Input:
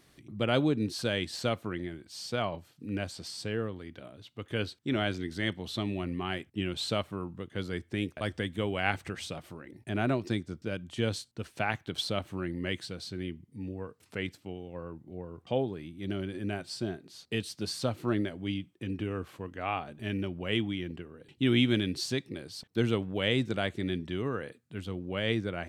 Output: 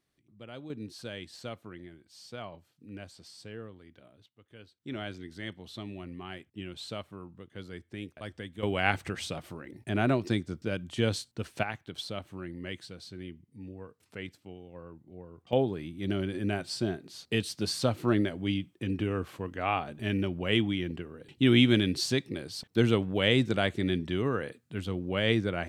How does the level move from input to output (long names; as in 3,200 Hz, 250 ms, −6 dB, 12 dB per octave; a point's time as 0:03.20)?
−18 dB
from 0:00.70 −10 dB
from 0:04.26 −19.5 dB
from 0:04.80 −8 dB
from 0:08.63 +2.5 dB
from 0:11.63 −5.5 dB
from 0:15.53 +3.5 dB